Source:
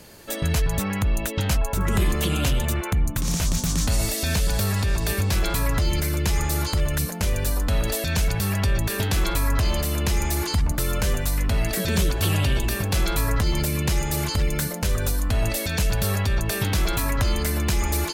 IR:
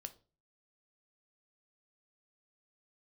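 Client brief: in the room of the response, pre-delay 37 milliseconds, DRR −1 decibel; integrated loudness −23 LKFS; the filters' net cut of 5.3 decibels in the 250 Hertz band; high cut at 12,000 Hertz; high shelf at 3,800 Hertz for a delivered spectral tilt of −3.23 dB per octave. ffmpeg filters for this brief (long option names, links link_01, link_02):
-filter_complex "[0:a]lowpass=12000,equalizer=frequency=250:width_type=o:gain=-8.5,highshelf=frequency=3800:gain=6,asplit=2[link_01][link_02];[1:a]atrim=start_sample=2205,adelay=37[link_03];[link_02][link_03]afir=irnorm=-1:irlink=0,volume=5.5dB[link_04];[link_01][link_04]amix=inputs=2:normalize=0,volume=-2.5dB"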